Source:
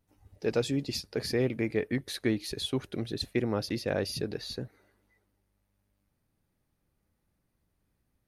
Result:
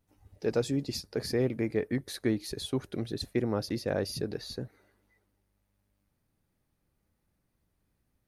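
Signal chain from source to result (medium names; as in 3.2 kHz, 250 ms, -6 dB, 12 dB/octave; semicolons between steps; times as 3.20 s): dynamic bell 2.8 kHz, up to -7 dB, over -52 dBFS, Q 1.3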